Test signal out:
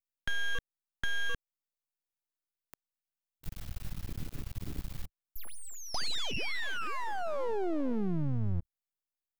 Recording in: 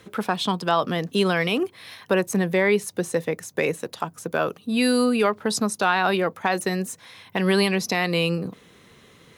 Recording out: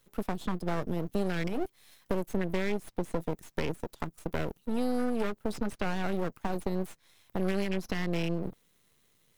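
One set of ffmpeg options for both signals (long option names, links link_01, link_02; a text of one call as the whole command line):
ffmpeg -i in.wav -filter_complex "[0:a]lowshelf=frequency=150:gain=7,afwtdn=0.0562,aemphasis=mode=production:type=75fm,aeval=exprs='max(val(0),0)':channel_layout=same,acrossover=split=510|5000[link_01][link_02][link_03];[link_01]acompressor=threshold=-25dB:ratio=4[link_04];[link_02]acompressor=threshold=-35dB:ratio=4[link_05];[link_03]acompressor=threshold=-52dB:ratio=4[link_06];[link_04][link_05][link_06]amix=inputs=3:normalize=0,volume=-1.5dB" out.wav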